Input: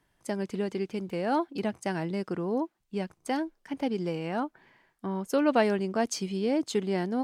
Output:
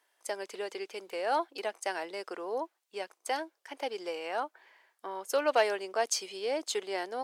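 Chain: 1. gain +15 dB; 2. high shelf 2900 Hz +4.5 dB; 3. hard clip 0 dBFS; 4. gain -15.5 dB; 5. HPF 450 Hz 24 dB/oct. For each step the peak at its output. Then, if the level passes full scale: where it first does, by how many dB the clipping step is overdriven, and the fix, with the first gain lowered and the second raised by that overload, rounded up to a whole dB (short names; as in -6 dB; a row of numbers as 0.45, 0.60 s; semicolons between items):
+2.5, +3.0, 0.0, -15.5, -13.0 dBFS; step 1, 3.0 dB; step 1 +12 dB, step 4 -12.5 dB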